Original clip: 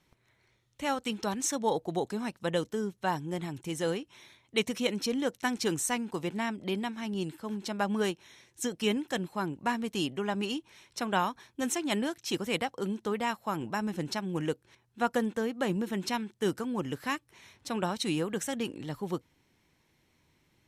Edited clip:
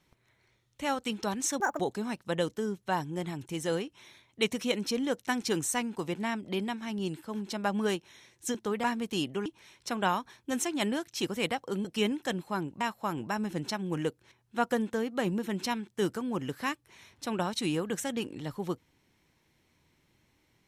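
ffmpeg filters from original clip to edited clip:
-filter_complex "[0:a]asplit=8[s0][s1][s2][s3][s4][s5][s6][s7];[s0]atrim=end=1.604[s8];[s1]atrim=start=1.6:end=1.95,asetpts=PTS-STARTPTS,asetrate=78498,aresample=44100,atrim=end_sample=8671,asetpts=PTS-STARTPTS[s9];[s2]atrim=start=1.946:end=8.702[s10];[s3]atrim=start=12.948:end=13.242[s11];[s4]atrim=start=9.658:end=10.282[s12];[s5]atrim=start=10.558:end=12.952[s13];[s6]atrim=start=8.698:end=9.662[s14];[s7]atrim=start=13.238[s15];[s8][s9]acrossfade=d=0.004:c1=hsin:c2=hsin[s16];[s16][s10]acrossfade=d=0.004:c1=hsin:c2=hsin[s17];[s17][s11]acrossfade=d=0.004:c1=hsin:c2=hsin[s18];[s18][s12]acrossfade=d=0.004:c1=hsin:c2=hsin[s19];[s19][s13]acrossfade=d=0.004:c1=hsin:c2=hsin[s20];[s20][s14]acrossfade=d=0.004:c1=hsin:c2=hsin[s21];[s21][s15]acrossfade=d=0.004:c1=hsin:c2=hsin"

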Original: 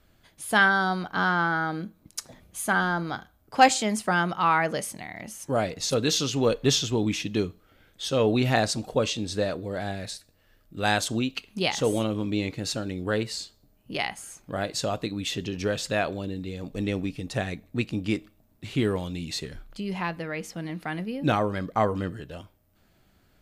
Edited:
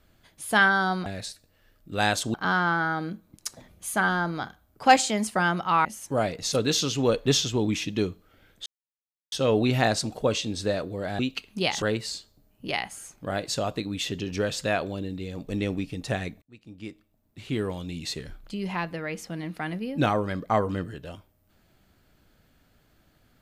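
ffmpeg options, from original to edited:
-filter_complex "[0:a]asplit=8[s0][s1][s2][s3][s4][s5][s6][s7];[s0]atrim=end=1.062[s8];[s1]atrim=start=9.908:end=11.192[s9];[s2]atrim=start=1.058:end=4.572[s10];[s3]atrim=start=5.228:end=8.04,asetpts=PTS-STARTPTS,afade=t=out:st=2.808:d=0.004:c=hsin,apad=pad_dur=0.66[s11];[s4]atrim=start=8.04:end=9.912,asetpts=PTS-STARTPTS,afade=t=in:d=0.004:c=hsin[s12];[s5]atrim=start=11.188:end=11.822[s13];[s6]atrim=start=13.078:end=17.68,asetpts=PTS-STARTPTS,afade=t=out:st=4.598:d=0.004:c=hsin[s14];[s7]atrim=start=17.68,asetpts=PTS-STARTPTS,afade=t=in:d=1.79[s15];[s8][s9]acrossfade=d=0.004:c1=hsin:c2=hsin[s16];[s16][s10]acrossfade=d=0.004:c1=hsin:c2=hsin[s17];[s11][s12]concat=n=2:v=0:a=1[s18];[s17][s18]acrossfade=d=0.004:c1=hsin:c2=hsin[s19];[s19][s13]acrossfade=d=0.004:c1=hsin:c2=hsin[s20];[s14][s15]concat=n=2:v=0:a=1[s21];[s20][s21]acrossfade=d=0.004:c1=hsin:c2=hsin"

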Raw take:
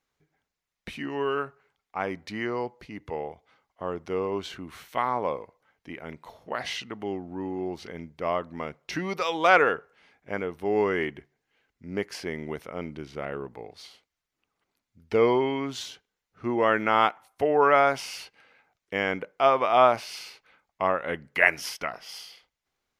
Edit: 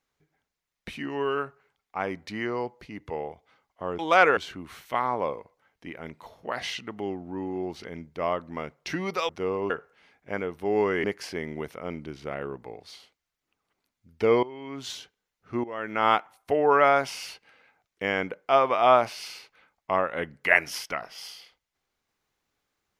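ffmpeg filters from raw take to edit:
-filter_complex "[0:a]asplit=8[s0][s1][s2][s3][s4][s5][s6][s7];[s0]atrim=end=3.992[s8];[s1]atrim=start=9.318:end=9.702[s9];[s2]atrim=start=4.398:end=9.322[s10];[s3]atrim=start=3.988:end=4.402[s11];[s4]atrim=start=9.698:end=11.042[s12];[s5]atrim=start=11.948:end=15.34,asetpts=PTS-STARTPTS,afade=t=out:st=3.388:d=0.004:c=hsin:silence=0.125893[s13];[s6]atrim=start=15.34:end=16.55,asetpts=PTS-STARTPTS,afade=t=in:d=0.47:c=qua:silence=0.125893,afade=t=out:st=1.206:d=0.004:c=hsin:silence=0.16788[s14];[s7]atrim=start=16.55,asetpts=PTS-STARTPTS,afade=t=in:d=0.43:c=qua:silence=0.16788[s15];[s8][s9]acrossfade=d=0.004:c1=hsin:c2=hsin[s16];[s16][s10]acrossfade=d=0.004:c1=hsin:c2=hsin[s17];[s17][s11]acrossfade=d=0.004:c1=hsin:c2=hsin[s18];[s18][s12]acrossfade=d=0.004:c1=hsin:c2=hsin[s19];[s13][s14][s15]concat=n=3:v=0:a=1[s20];[s19][s20]acrossfade=d=0.004:c1=hsin:c2=hsin"

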